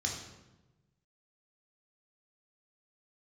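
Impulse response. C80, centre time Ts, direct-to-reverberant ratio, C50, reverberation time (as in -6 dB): 6.5 dB, 41 ms, -1.5 dB, 4.0 dB, 1.1 s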